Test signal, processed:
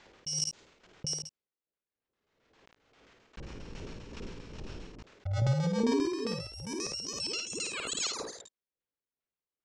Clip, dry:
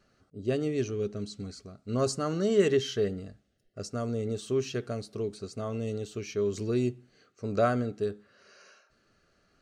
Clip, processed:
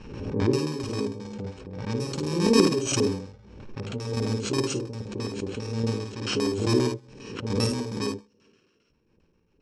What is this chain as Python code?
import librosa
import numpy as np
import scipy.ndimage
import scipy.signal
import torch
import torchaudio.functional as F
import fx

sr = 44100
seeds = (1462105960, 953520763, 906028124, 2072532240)

y = fx.bit_reversed(x, sr, seeds[0], block=64)
y = fx.env_lowpass(y, sr, base_hz=2600.0, full_db=-25.5)
y = fx.dynamic_eq(y, sr, hz=1800.0, q=1.5, threshold_db=-49.0, ratio=4.0, max_db=-5)
y = fx.tremolo_shape(y, sr, shape='saw_down', hz=2.4, depth_pct=75)
y = fx.filter_lfo_lowpass(y, sr, shape='square', hz=7.5, low_hz=450.0, high_hz=7200.0, q=2.5)
y = fx.air_absorb(y, sr, metres=82.0)
y = fx.room_early_taps(y, sr, ms=(53, 71), db=(-4.5, -10.5))
y = fx.pre_swell(y, sr, db_per_s=52.0)
y = F.gain(torch.from_numpy(y), 6.0).numpy()